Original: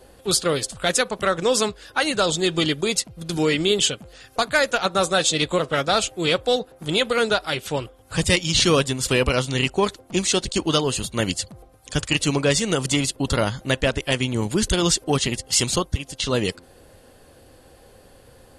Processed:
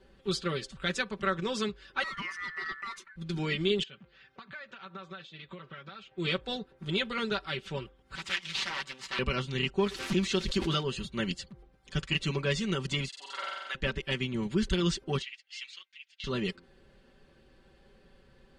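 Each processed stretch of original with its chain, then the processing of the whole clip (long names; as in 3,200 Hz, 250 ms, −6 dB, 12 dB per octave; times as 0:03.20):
0:02.03–0:03.16: flat-topped bell 4,700 Hz −10 dB 1.1 octaves + downward compressor 3 to 1, threshold −22 dBFS + ring modulation 1,600 Hz
0:03.83–0:06.18: parametric band 330 Hz −7 dB 2 octaves + downward compressor 20 to 1, threshold −30 dBFS + band-pass filter 120–3,300 Hz
0:08.15–0:09.19: lower of the sound and its delayed copy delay 1 ms + high-pass filter 930 Hz 6 dB per octave + highs frequency-modulated by the lows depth 0.67 ms
0:09.79–0:10.83: spike at every zero crossing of −22 dBFS + high-shelf EQ 8,300 Hz −8 dB + background raised ahead of every attack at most 38 dB per second
0:13.08–0:13.75: upward compression, threshold −26 dBFS + four-pole ladder high-pass 660 Hz, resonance 20% + flutter between parallel walls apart 7.8 metres, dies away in 1.4 s
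0:15.22–0:16.24: one scale factor per block 5 bits + four-pole ladder band-pass 2,700 Hz, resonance 45% + high-shelf EQ 3,500 Hz +6.5 dB
whole clip: low-pass filter 3,500 Hz 12 dB per octave; parametric band 680 Hz −11 dB 0.89 octaves; comb filter 5.2 ms, depth 72%; level −8.5 dB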